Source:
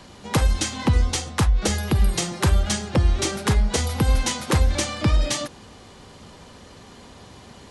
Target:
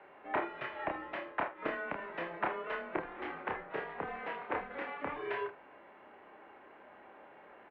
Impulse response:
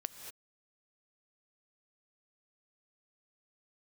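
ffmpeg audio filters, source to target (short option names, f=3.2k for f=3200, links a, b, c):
-filter_complex "[0:a]asettb=1/sr,asplit=3[a][b][c];[a]atrim=end=3.024[d];[b]atrim=start=3.02:end=5.16,asetpts=PTS-STARTPTS,afade=t=in:d=0.004:c=qsin,afade=t=out:st=2.136:d=0.004:c=qsin,aeval=exprs='val(0)*sin(2*PI*150*n/s)':c=same[e];[c]atrim=start=5.156[f];[d][e]acrossfade=d=0.004:c1=hsin:c2=qsin[g];[g][f]acrossfade=d=0.004:c1=qsin:c2=hsin,aecho=1:1:29|77:0.631|0.188,highpass=f=560:t=q:w=0.5412,highpass=f=560:t=q:w=1.307,lowpass=f=2.4k:t=q:w=0.5176,lowpass=f=2.4k:t=q:w=0.7071,lowpass=f=2.4k:t=q:w=1.932,afreqshift=-180,volume=-6.5dB"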